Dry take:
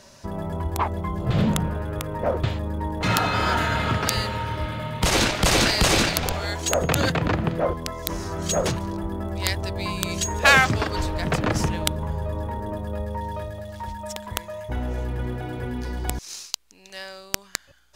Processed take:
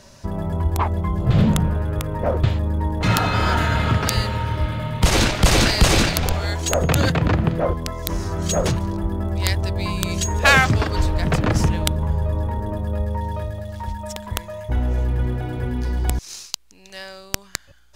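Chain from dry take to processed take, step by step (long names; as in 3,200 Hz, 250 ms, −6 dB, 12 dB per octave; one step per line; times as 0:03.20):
low-shelf EQ 150 Hz +8.5 dB
level +1 dB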